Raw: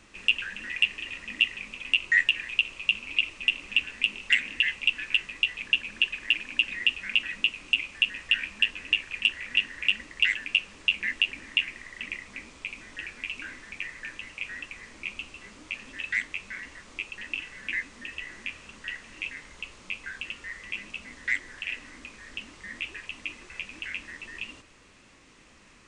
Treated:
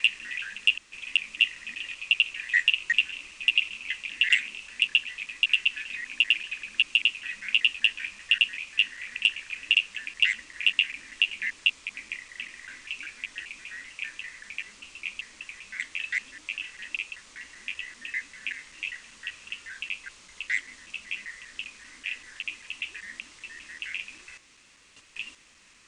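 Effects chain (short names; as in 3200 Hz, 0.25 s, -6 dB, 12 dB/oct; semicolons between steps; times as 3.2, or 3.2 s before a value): slices in reverse order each 0.195 s, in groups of 5; tilt shelf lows -7 dB, about 1400 Hz; gain -3 dB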